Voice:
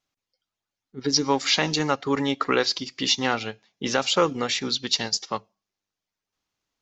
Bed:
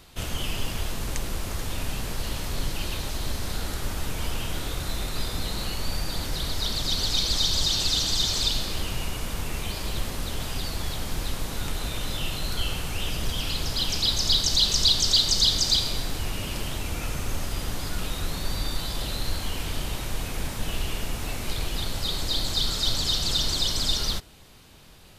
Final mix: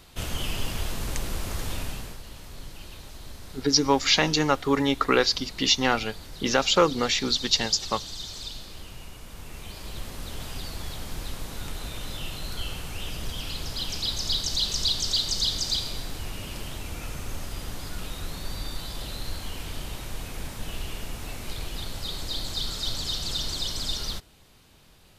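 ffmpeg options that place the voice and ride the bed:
-filter_complex "[0:a]adelay=2600,volume=1dB[a];[1:a]volume=7dB,afade=t=out:st=1.71:d=0.5:silence=0.251189,afade=t=in:st=9.26:d=1.16:silence=0.421697[b];[a][b]amix=inputs=2:normalize=0"

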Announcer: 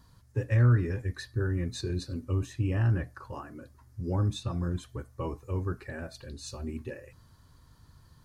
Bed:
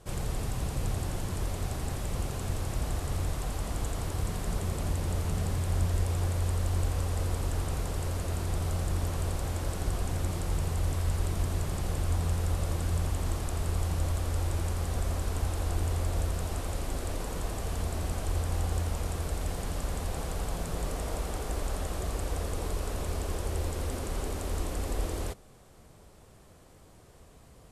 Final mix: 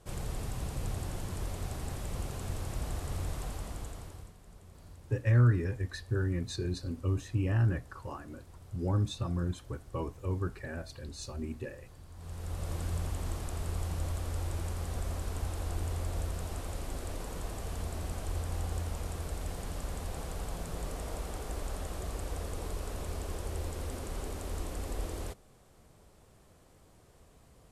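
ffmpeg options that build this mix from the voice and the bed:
-filter_complex "[0:a]adelay=4750,volume=-1.5dB[a];[1:a]volume=13dB,afade=t=out:st=3.42:d=0.92:silence=0.125893,afade=t=in:st=12.14:d=0.63:silence=0.133352[b];[a][b]amix=inputs=2:normalize=0"

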